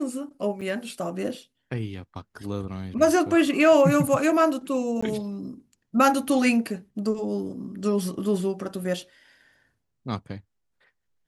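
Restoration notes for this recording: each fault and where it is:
0.61–0.62 s: dropout 5.8 ms
5.01–5.03 s: dropout 15 ms

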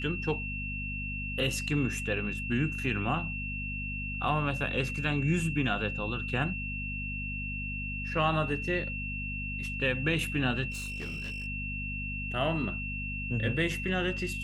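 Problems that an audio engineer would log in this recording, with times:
hum 50 Hz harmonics 5 -38 dBFS
whine 2.7 kHz -36 dBFS
10.70–11.47 s: clipped -33.5 dBFS

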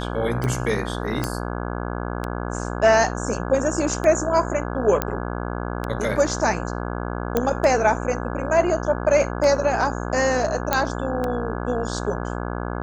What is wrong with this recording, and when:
buzz 60 Hz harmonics 28 -28 dBFS
tick 33 1/3 rpm -13 dBFS
1.24 s: pop -9 dBFS
5.02 s: pop -6 dBFS
7.37 s: pop -7 dBFS
10.73 s: pop -3 dBFS

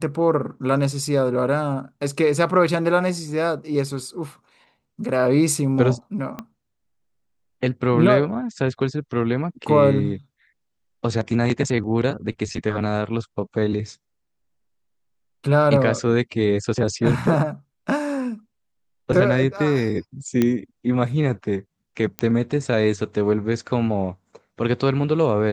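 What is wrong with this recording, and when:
6.39 s: pop -17 dBFS
20.42 s: pop -7 dBFS
22.19 s: pop -10 dBFS

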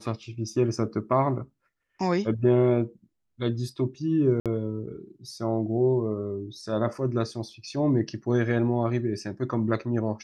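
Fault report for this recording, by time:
4.40–4.46 s: dropout 57 ms

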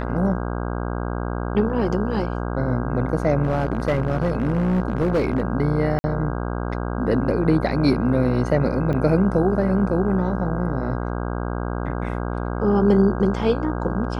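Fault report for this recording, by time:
buzz 60 Hz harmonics 27 -26 dBFS
3.43–5.41 s: clipped -15.5 dBFS
5.99–6.04 s: dropout 50 ms
8.93–8.94 s: dropout 5.4 ms

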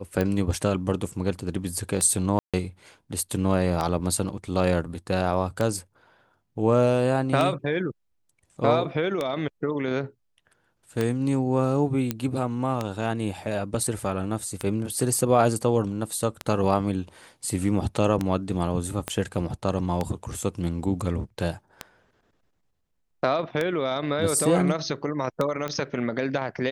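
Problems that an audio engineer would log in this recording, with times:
tick 33 1/3 rpm -12 dBFS
2.39–2.54 s: dropout 146 ms
12.11 s: pop -11 dBFS
19.08 s: pop -12 dBFS
25.68 s: pop -16 dBFS

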